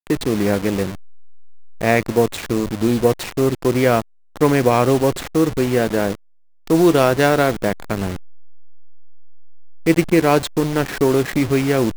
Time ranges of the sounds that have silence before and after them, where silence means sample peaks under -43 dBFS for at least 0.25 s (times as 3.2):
4.36–6.15